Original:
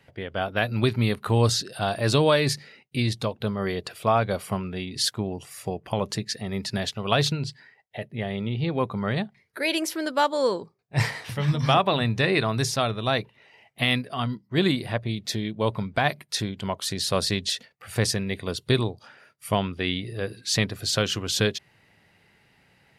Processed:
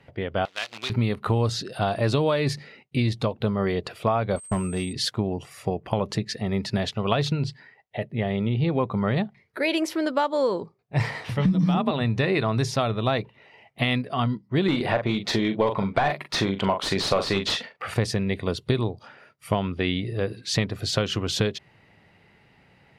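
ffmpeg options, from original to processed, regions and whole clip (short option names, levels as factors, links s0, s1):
-filter_complex "[0:a]asettb=1/sr,asplit=3[s0][s1][s2];[s0]atrim=end=0.454[s3];[s1]atrim=start=0.45:end=0.9,asetpts=PTS-STARTPTS,afade=t=in:d=0.004:c=qsin,afade=t=out:st=0.446:d=0.004:c=qsin,acrusher=bits=5:dc=4:mix=0:aa=0.000001,bandpass=f=4100:t=q:w=1.1[s4];[s2]atrim=start=0.896[s5];[s3][s4]acrossfade=d=0.004:c1=hsin:c2=qsin[s6];[s6][s5]acrossfade=d=0.004:c1=qsin:c2=hsin,asettb=1/sr,asplit=3[s7][s8][s9];[s7]atrim=end=4.364[s10];[s8]atrim=start=4.36:end=4.93,asetpts=PTS-STARTPTS,afade=t=in:d=0.004:c=qsin,afade=t=out:st=0.566:d=0.004:c=qsin,agate=range=0.0224:threshold=0.0126:ratio=16:release=100:detection=peak,aeval=exprs='val(0)+0.02*sin(2*PI*8300*n/s)':c=same,aeval=exprs='clip(val(0),-1,0.0708)':c=same[s11];[s9]atrim=start=4.926[s12];[s10][s11]acrossfade=d=0.004:c1=hsin:c2=qsin[s13];[s13][s12]acrossfade=d=0.004:c1=qsin:c2=hsin,asettb=1/sr,asplit=3[s14][s15][s16];[s14]atrim=end=11.454[s17];[s15]atrim=start=11.45:end=11.91,asetpts=PTS-STARTPTS,afade=t=in:d=0.004:c=qsin,afade=t=out:st=0.456:d=0.004:c=qsin,bass=f=250:g=15,treble=f=4000:g=7,acompressor=threshold=0.251:ratio=3:attack=3.2:release=140:knee=1:detection=peak,afreqshift=39[s18];[s16]atrim=start=11.906[s19];[s17][s18]acrossfade=d=0.004:c1=hsin:c2=qsin[s20];[s20][s19]acrossfade=d=0.004:c1=qsin:c2=hsin,asettb=1/sr,asplit=3[s21][s22][s23];[s21]atrim=end=14.684[s24];[s22]atrim=start=14.68:end=17.94,asetpts=PTS-STARTPTS,afade=t=in:d=0.004:c=qsin,afade=t=out:st=3.256:d=0.004:c=qsin,highshelf=f=4600:g=5.5,asplit=2[s25][s26];[s26]adelay=41,volume=0.316[s27];[s25][s27]amix=inputs=2:normalize=0,atrim=end_sample=143766,asplit=2[s28][s29];[s29]highpass=f=720:p=1,volume=8.91,asoftclip=type=tanh:threshold=0.473[s30];[s28][s30]amix=inputs=2:normalize=0,lowpass=f=1500:p=1,volume=0.501[s31];[s23]atrim=start=17.936[s32];[s24][s31]acrossfade=d=0.004:c1=hsin:c2=qsin[s33];[s33][s32]acrossfade=d=0.004:c1=qsin:c2=hsin,lowpass=f=2300:p=1,acompressor=threshold=0.0631:ratio=6,equalizer=f=1600:t=o:w=0.23:g=-4,volume=1.78"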